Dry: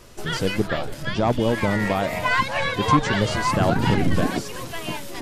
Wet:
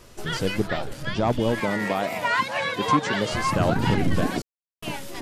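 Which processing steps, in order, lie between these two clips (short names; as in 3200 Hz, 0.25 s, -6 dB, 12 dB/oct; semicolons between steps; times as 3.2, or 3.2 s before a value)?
1.6–3.33 HPF 180 Hz 12 dB/oct; 4.42–4.83 mute; record warp 45 rpm, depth 100 cents; gain -2 dB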